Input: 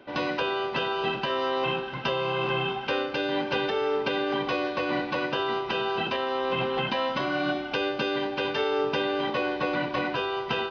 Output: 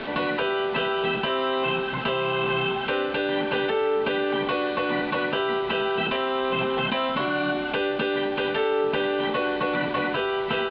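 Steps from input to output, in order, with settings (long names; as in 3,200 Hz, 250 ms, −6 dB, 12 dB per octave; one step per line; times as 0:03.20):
linear delta modulator 64 kbit/s, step −38 dBFS
Butterworth low-pass 3,900 Hz 48 dB per octave
comb filter 4.6 ms, depth 38%
envelope flattener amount 50%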